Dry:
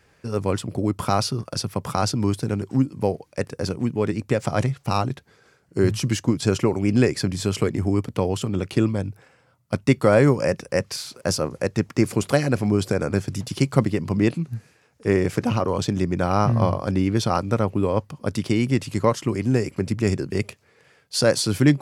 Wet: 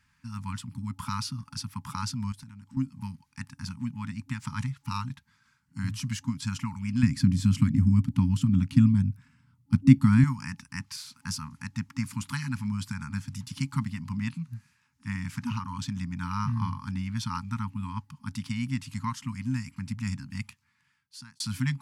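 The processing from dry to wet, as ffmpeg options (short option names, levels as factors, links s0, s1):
-filter_complex "[0:a]asettb=1/sr,asplit=3[s0][s1][s2];[s0]atrim=end=2.324[s3];[s1]atrim=start=2.32:end=2.77,asetpts=PTS-STARTPTS,afade=t=in:d=0.004:c=qsin,afade=t=out:st=0.446:d=0.004:c=qsin,acompressor=threshold=0.02:ratio=4:attack=3.2:release=140:knee=1:detection=peak[s4];[s2]atrim=start=2.766[s5];[s3][s4]acrossfade=d=0.004:c1=hsin:c2=qsin[s6];[s6][s5]acrossfade=d=0.004:c1=qsin:c2=hsin,asettb=1/sr,asplit=3[s7][s8][s9];[s7]atrim=end=7.034[s10];[s8]atrim=start=7.03:end=10.24,asetpts=PTS-STARTPTS,afade=t=in:d=0.004:c=qsin,afade=t=out:st=3.206:d=0.004:c=qsin,lowshelf=f=510:t=q:w=1.5:g=11[s11];[s9]atrim=start=10.236[s12];[s10][s11]acrossfade=d=0.004:c1=hsin:c2=qsin[s13];[s13][s12]acrossfade=d=0.004:c1=qsin:c2=hsin,asplit=2[s14][s15];[s14]atrim=end=21.4,asetpts=PTS-STARTPTS,afade=t=out:st=20.43:d=0.97[s16];[s15]atrim=start=21.4,asetpts=PTS-STARTPTS,afade=t=in:d=0.004:c=hsin[s17];[s16][s17]concat=n=2:v=0:a=1,afftfilt=real='re*(1-between(b*sr/4096,270,840))':imag='im*(1-between(b*sr/4096,270,840))':win_size=4096:overlap=0.75,volume=0.376"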